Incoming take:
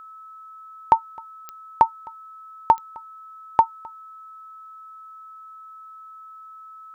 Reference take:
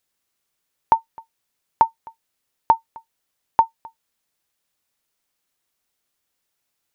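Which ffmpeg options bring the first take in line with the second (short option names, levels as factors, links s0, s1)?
-af "adeclick=t=4,bandreject=f=1300:w=30"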